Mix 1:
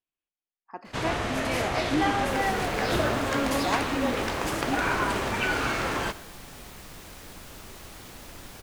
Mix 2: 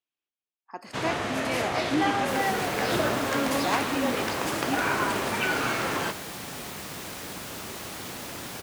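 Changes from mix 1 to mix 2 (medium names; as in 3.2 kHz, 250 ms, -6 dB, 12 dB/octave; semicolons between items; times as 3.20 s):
speech: remove distance through air 210 m; second sound +8.0 dB; master: add high-pass 120 Hz 12 dB/octave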